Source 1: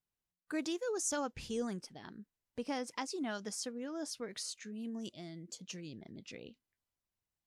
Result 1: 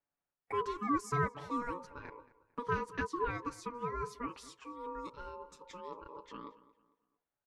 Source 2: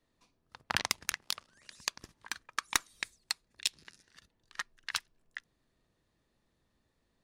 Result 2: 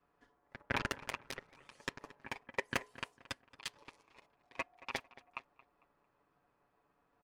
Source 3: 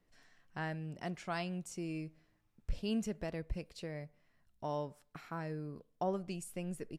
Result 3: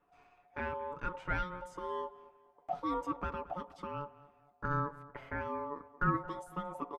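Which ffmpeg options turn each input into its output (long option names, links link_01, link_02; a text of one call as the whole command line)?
ffmpeg -i in.wav -filter_complex "[0:a]equalizer=frequency=4300:width=0.35:gain=-12,bandreject=frequency=60:width_type=h:width=6,bandreject=frequency=120:width_type=h:width=6,bandreject=frequency=180:width_type=h:width=6,bandreject=frequency=240:width_type=h:width=6,bandreject=frequency=300:width_type=h:width=6,aecho=1:1:7.2:0.73,asplit=2[link_01][link_02];[link_02]highpass=frequency=720:poles=1,volume=14dB,asoftclip=type=tanh:threshold=-15dB[link_03];[link_01][link_03]amix=inputs=2:normalize=0,lowpass=frequency=1200:poles=1,volume=-6dB,aeval=exprs='val(0)*sin(2*PI*720*n/s)':channel_layout=same,asplit=2[link_04][link_05];[link_05]adelay=225,lowpass=frequency=3200:poles=1,volume=-18dB,asplit=2[link_06][link_07];[link_07]adelay=225,lowpass=frequency=3200:poles=1,volume=0.37,asplit=2[link_08][link_09];[link_09]adelay=225,lowpass=frequency=3200:poles=1,volume=0.37[link_10];[link_06][link_08][link_10]amix=inputs=3:normalize=0[link_11];[link_04][link_11]amix=inputs=2:normalize=0,volume=3.5dB" out.wav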